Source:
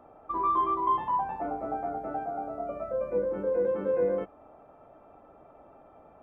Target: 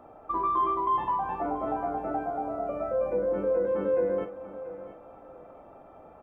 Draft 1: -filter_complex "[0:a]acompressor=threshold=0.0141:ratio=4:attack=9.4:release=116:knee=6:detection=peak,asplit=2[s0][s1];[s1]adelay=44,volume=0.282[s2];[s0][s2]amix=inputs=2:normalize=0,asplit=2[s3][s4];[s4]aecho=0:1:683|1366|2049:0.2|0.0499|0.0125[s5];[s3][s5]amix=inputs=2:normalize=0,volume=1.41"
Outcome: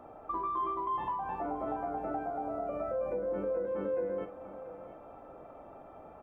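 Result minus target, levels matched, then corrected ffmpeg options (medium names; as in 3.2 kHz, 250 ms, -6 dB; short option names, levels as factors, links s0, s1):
compression: peak gain reduction +8 dB
-filter_complex "[0:a]acompressor=threshold=0.0473:ratio=4:attack=9.4:release=116:knee=6:detection=peak,asplit=2[s0][s1];[s1]adelay=44,volume=0.282[s2];[s0][s2]amix=inputs=2:normalize=0,asplit=2[s3][s4];[s4]aecho=0:1:683|1366|2049:0.2|0.0499|0.0125[s5];[s3][s5]amix=inputs=2:normalize=0,volume=1.41"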